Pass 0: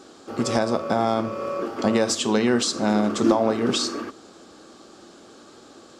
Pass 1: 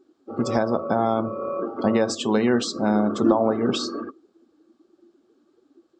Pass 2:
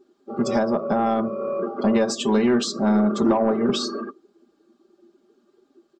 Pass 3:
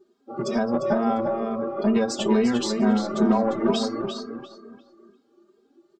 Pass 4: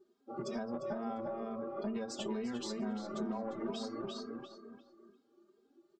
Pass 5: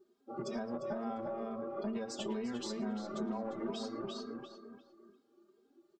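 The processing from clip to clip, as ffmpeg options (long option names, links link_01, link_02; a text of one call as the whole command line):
ffmpeg -i in.wav -af "afftdn=noise_reduction=23:noise_floor=-33,aemphasis=mode=reproduction:type=cd" out.wav
ffmpeg -i in.wav -af "aecho=1:1:5:0.68,asoftclip=type=tanh:threshold=-10dB" out.wav
ffmpeg -i in.wav -filter_complex "[0:a]asplit=2[link_01][link_02];[link_02]adelay=349,lowpass=frequency=3700:poles=1,volume=-4.5dB,asplit=2[link_03][link_04];[link_04]adelay=349,lowpass=frequency=3700:poles=1,volume=0.3,asplit=2[link_05][link_06];[link_06]adelay=349,lowpass=frequency=3700:poles=1,volume=0.3,asplit=2[link_07][link_08];[link_08]adelay=349,lowpass=frequency=3700:poles=1,volume=0.3[link_09];[link_03][link_05][link_07][link_09]amix=inputs=4:normalize=0[link_10];[link_01][link_10]amix=inputs=2:normalize=0,asplit=2[link_11][link_12];[link_12]adelay=2.9,afreqshift=2.2[link_13];[link_11][link_13]amix=inputs=2:normalize=1" out.wav
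ffmpeg -i in.wav -af "acompressor=threshold=-30dB:ratio=3,volume=-8dB" out.wav
ffmpeg -i in.wav -filter_complex "[0:a]asplit=2[link_01][link_02];[link_02]adelay=110,highpass=300,lowpass=3400,asoftclip=type=hard:threshold=-35.5dB,volume=-15dB[link_03];[link_01][link_03]amix=inputs=2:normalize=0" out.wav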